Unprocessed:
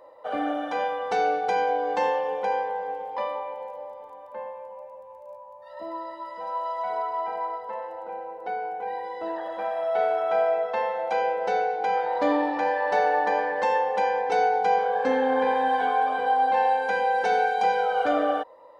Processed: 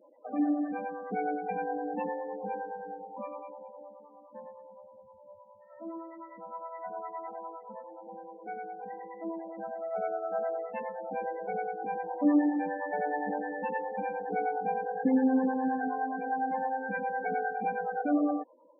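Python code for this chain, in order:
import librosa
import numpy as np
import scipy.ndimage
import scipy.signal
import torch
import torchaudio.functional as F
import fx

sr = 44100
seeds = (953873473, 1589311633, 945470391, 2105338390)

y = fx.graphic_eq_10(x, sr, hz=(125, 250, 500, 1000, 2000, 4000), db=(3, 8, -9, -10, -3, -12))
y = fx.harmonic_tremolo(y, sr, hz=9.7, depth_pct=70, crossover_hz=480.0)
y = fx.spec_topn(y, sr, count=16)
y = y * librosa.db_to_amplitude(3.5)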